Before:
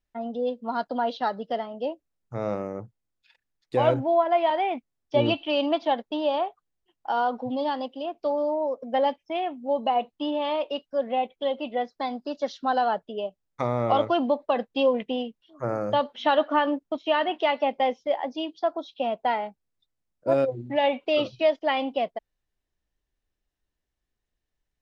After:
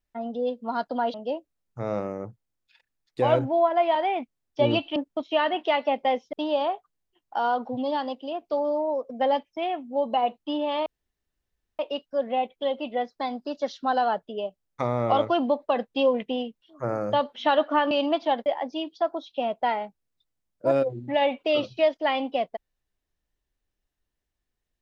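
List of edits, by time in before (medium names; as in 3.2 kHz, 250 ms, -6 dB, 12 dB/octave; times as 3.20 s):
1.14–1.69 s: delete
5.51–6.06 s: swap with 16.71–18.08 s
10.59 s: insert room tone 0.93 s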